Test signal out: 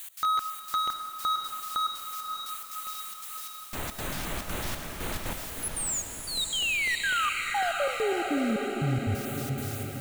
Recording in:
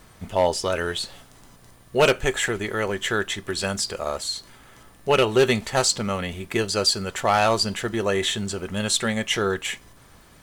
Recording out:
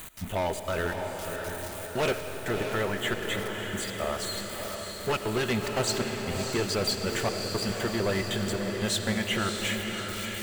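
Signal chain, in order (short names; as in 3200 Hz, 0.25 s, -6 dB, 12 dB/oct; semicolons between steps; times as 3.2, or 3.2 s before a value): switching spikes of -27 dBFS; high shelf 6500 Hz -11.5 dB; in parallel at -2 dB: compressor, threshold -32 dBFS; on the sum: LFO notch square 4 Hz 460–5200 Hz; hard clip -19.5 dBFS; step gate "x.xxxxx.xxx...x" 177 bpm -60 dB; on a send: diffused feedback echo 0.615 s, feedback 59%, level -5.5 dB; on the sum: digital reverb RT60 3.8 s, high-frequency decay 0.85×, pre-delay 45 ms, DRR 8.5 dB; gain -4 dB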